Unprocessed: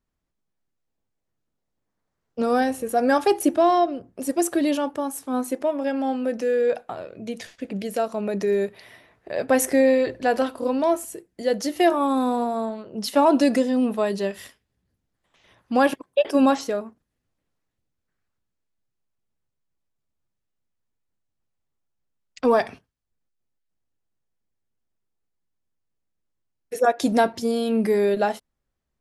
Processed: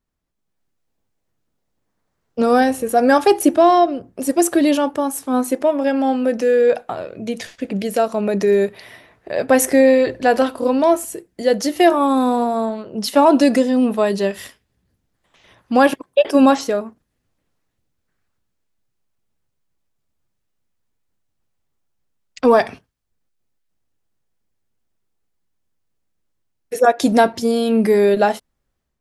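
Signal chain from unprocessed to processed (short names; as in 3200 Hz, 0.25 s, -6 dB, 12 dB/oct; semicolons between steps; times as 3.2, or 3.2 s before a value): AGC gain up to 6 dB; gain +1 dB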